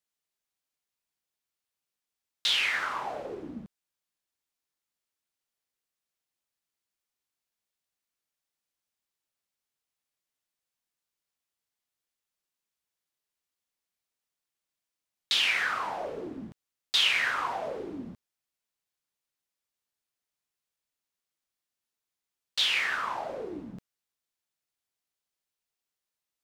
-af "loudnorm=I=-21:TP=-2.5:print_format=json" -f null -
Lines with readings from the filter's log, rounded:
"input_i" : "-27.9",
"input_tp" : "-13.7",
"input_lra" : "21.6",
"input_thresh" : "-39.6",